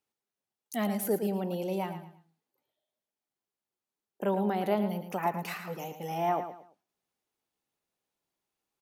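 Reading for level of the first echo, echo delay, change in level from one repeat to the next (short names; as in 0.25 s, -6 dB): -10.0 dB, 0.111 s, -10.5 dB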